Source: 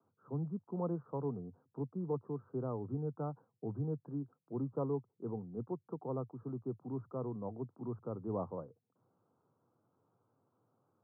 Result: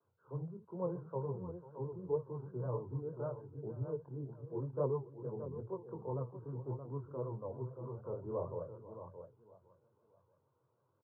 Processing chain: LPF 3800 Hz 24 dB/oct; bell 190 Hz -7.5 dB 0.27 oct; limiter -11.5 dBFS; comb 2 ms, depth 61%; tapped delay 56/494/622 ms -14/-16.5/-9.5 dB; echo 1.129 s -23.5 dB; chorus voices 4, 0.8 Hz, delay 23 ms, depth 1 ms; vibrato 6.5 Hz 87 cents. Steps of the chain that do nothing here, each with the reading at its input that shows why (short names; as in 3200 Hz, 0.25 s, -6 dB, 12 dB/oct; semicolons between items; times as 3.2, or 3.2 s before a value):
LPF 3800 Hz: input band ends at 1400 Hz; limiter -11.5 dBFS: input peak -25.5 dBFS